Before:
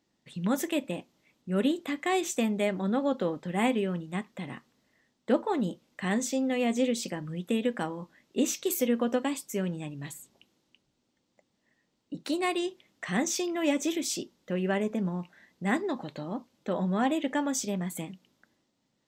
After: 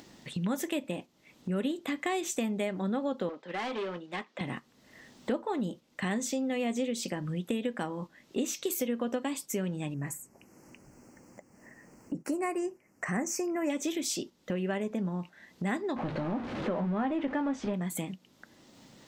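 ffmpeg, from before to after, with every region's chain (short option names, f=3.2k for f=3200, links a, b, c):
-filter_complex "[0:a]asettb=1/sr,asplit=3[a][b][c];[a]atrim=end=3.294[d];[b]atrim=start=3.29:end=4.41,asetpts=PTS-STARTPTS,afade=t=in:d=0.004:c=qsin,afade=t=out:st=1.116:d=0.004:c=qsin,highpass=f=220:p=1,asoftclip=type=hard:threshold=-32dB,acrossover=split=290 5900:gain=0.158 1 0.112[e][f][g];[e][f][g]amix=inputs=3:normalize=0[h];[c]atrim=start=4.406[i];[d][h]acrossfade=d=0.004:c1=hsin:c2=qsin[j];[j][i]acrossfade=d=0.004:c1=qsin:c2=hsin,asettb=1/sr,asplit=3[k][l][m];[k]atrim=end=9.944[n];[l]atrim=start=9.94:end=13.7,asetpts=PTS-STARTPTS,afade=t=in:d=0.004:c=qsin,afade=t=out:st=3.756:d=0.004:c=qsin,asuperstop=centerf=3600:order=4:qfactor=0.97,asoftclip=type=hard:threshold=-17dB[o];[m]atrim=start=13.696[p];[n][o]acrossfade=d=0.004:c1=hsin:c2=qsin[q];[q][p]acrossfade=d=0.004:c1=qsin:c2=hsin,asettb=1/sr,asplit=3[r][s][t];[r]atrim=end=15.964[u];[s]atrim=start=15.96:end=17.74,asetpts=PTS-STARTPTS,afade=t=in:d=0.004:c=qsin,afade=t=out:st=1.776:d=0.004:c=qsin,aeval=exprs='val(0)+0.5*0.0224*sgn(val(0))':c=same,lowpass=2k,asplit=2[v][w];[w]adelay=18,volume=-11dB[x];[v][x]amix=inputs=2:normalize=0,atrim=end_sample=78498[y];[t]atrim=start=17.736[z];[u][y]acrossfade=d=0.004:c1=hsin:c2=qsin[aa];[aa][z]acrossfade=d=0.004:c1=qsin:c2=hsin,acompressor=mode=upward:threshold=-36dB:ratio=2.5,agate=range=-6dB:threshold=-42dB:ratio=16:detection=peak,acompressor=threshold=-37dB:ratio=3,volume=5.5dB"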